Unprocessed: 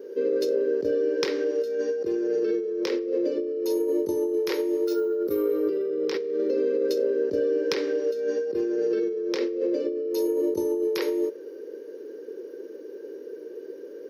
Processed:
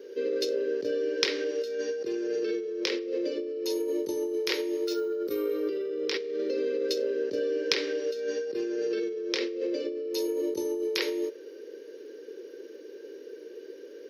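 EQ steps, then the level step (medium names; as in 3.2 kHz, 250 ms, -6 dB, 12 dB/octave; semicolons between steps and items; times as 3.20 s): frequency weighting D; -4.5 dB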